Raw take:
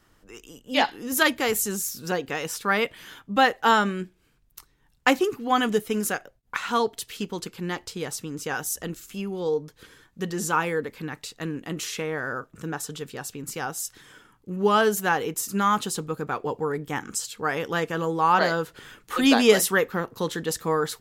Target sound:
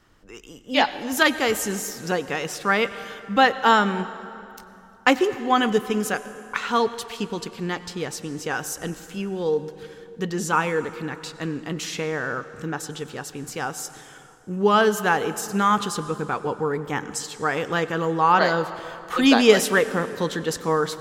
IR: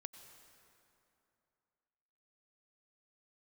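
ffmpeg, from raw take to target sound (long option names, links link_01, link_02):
-filter_complex "[0:a]asplit=2[link_01][link_02];[1:a]atrim=start_sample=2205,lowpass=8100[link_03];[link_02][link_03]afir=irnorm=-1:irlink=0,volume=6.5dB[link_04];[link_01][link_04]amix=inputs=2:normalize=0,volume=-4dB"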